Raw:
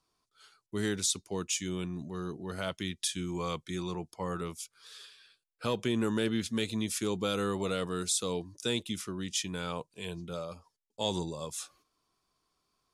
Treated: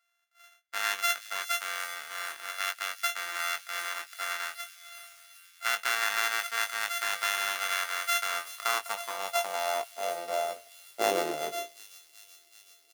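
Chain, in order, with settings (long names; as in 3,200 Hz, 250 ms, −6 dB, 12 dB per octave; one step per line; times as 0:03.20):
samples sorted by size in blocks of 64 samples
double-tracking delay 20 ms −7 dB
delay with a high-pass on its return 378 ms, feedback 73%, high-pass 3,500 Hz, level −12 dB
high-pass filter sweep 1,500 Hz → 390 Hz, 0:08.09–0:11.24
level +2.5 dB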